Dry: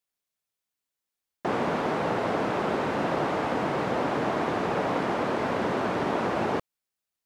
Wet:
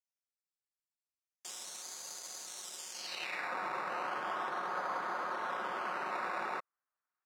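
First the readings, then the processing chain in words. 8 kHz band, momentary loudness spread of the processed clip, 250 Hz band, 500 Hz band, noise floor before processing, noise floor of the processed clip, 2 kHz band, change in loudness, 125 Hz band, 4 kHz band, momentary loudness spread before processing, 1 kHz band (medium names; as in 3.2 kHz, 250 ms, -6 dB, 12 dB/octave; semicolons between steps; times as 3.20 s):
+6.0 dB, 6 LU, -24.0 dB, -18.0 dB, under -85 dBFS, under -85 dBFS, -7.0 dB, -11.0 dB, -28.0 dB, -5.5 dB, 1 LU, -9.0 dB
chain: comb 5.5 ms, depth 45%; decimation with a swept rate 11×, swing 60% 0.35 Hz; band-pass sweep 7.1 kHz -> 1.3 kHz, 2.90–3.53 s; trim -2 dB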